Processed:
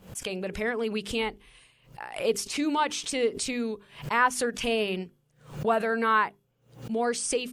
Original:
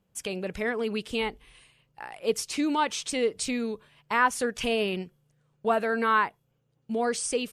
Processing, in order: notches 50/100/150/200/250/300/350/400 Hz; backwards sustainer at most 130 dB/s

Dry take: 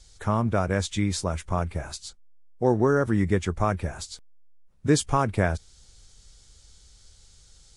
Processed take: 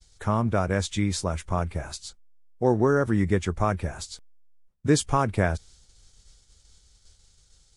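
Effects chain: expander -47 dBFS

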